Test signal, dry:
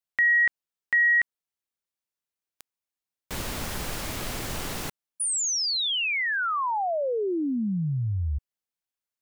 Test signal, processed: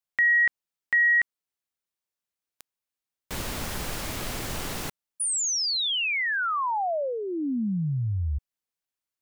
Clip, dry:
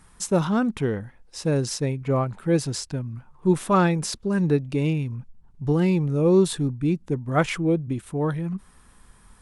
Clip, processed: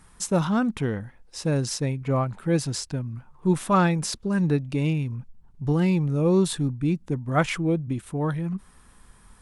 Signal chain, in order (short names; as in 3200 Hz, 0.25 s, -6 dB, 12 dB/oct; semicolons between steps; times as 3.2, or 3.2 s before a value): dynamic EQ 410 Hz, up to -5 dB, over -34 dBFS, Q 2.2